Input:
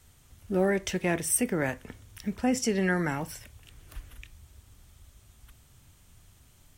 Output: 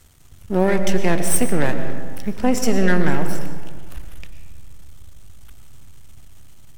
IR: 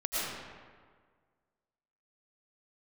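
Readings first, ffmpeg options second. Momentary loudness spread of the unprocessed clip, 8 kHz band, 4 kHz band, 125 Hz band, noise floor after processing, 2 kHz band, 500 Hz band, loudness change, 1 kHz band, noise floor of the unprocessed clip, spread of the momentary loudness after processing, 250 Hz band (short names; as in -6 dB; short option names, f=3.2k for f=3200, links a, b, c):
18 LU, +5.0 dB, +6.5 dB, +9.5 dB, -44 dBFS, +6.0 dB, +8.0 dB, +7.0 dB, +9.0 dB, -59 dBFS, 20 LU, +8.0 dB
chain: -filter_complex "[0:a]aeval=exprs='if(lt(val(0),0),0.251*val(0),val(0))':c=same,asplit=2[a][b];[1:a]atrim=start_sample=2205,lowshelf=f=410:g=5.5[c];[b][c]afir=irnorm=-1:irlink=0,volume=-14dB[d];[a][d]amix=inputs=2:normalize=0,volume=7.5dB"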